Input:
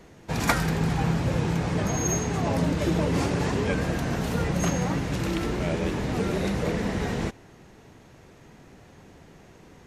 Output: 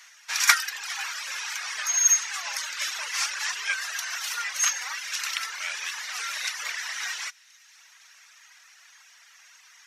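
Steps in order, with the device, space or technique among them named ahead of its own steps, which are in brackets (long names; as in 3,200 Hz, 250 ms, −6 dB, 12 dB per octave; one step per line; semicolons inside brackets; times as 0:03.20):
headphones lying on a table (high-pass filter 1,400 Hz 24 dB per octave; parametric band 5,700 Hz +8 dB 0.36 octaves)
reverb reduction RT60 1.1 s
delay with a high-pass on its return 513 ms, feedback 48%, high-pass 2,600 Hz, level −23 dB
level +8.5 dB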